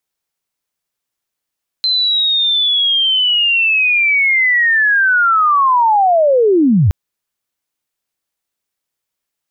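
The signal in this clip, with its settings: chirp linear 4100 Hz -> 75 Hz -11.5 dBFS -> -7.5 dBFS 5.07 s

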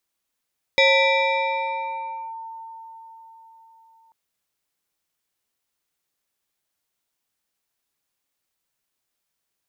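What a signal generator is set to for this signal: FM tone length 3.34 s, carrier 903 Hz, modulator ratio 1.6, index 2, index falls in 1.56 s linear, decay 4.75 s, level -12 dB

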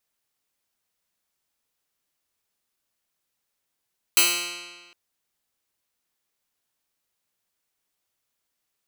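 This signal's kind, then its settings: plucked string F3, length 0.76 s, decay 1.45 s, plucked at 0.1, bright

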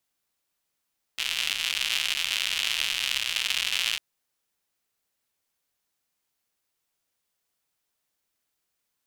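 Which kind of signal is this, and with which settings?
rain from filtered ticks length 2.80 s, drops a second 170, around 2900 Hz, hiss -26 dB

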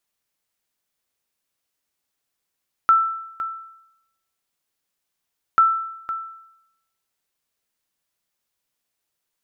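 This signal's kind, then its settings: sonar ping 1330 Hz, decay 0.83 s, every 2.69 s, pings 2, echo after 0.51 s, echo -12.5 dB -8.5 dBFS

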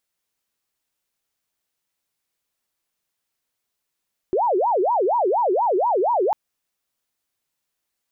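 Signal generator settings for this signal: siren wail 357–976 Hz 4.2/s sine -16.5 dBFS 2.00 s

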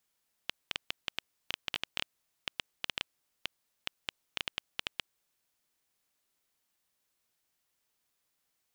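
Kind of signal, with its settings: random clicks 6.2/s -13.5 dBFS 5.01 s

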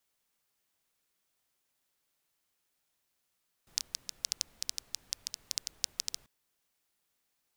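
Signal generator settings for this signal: rain from filtered ticks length 2.59 s, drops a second 8.3, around 5300 Hz, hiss -23 dB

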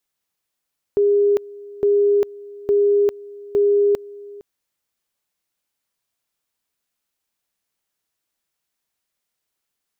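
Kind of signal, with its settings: two-level tone 407 Hz -12.5 dBFS, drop 21.5 dB, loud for 0.40 s, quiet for 0.46 s, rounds 4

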